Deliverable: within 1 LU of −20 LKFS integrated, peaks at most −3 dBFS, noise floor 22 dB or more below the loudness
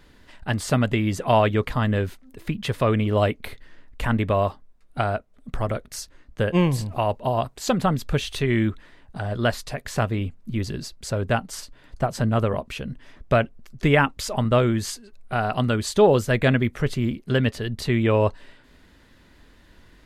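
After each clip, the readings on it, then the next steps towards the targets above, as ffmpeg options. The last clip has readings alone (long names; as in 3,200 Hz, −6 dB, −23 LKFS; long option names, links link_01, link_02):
integrated loudness −23.5 LKFS; sample peak −4.0 dBFS; target loudness −20.0 LKFS
→ -af "volume=3.5dB,alimiter=limit=-3dB:level=0:latency=1"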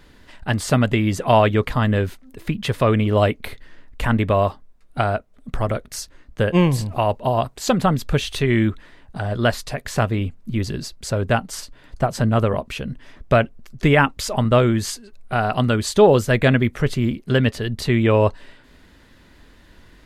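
integrated loudness −20.5 LKFS; sample peak −3.0 dBFS; background noise floor −51 dBFS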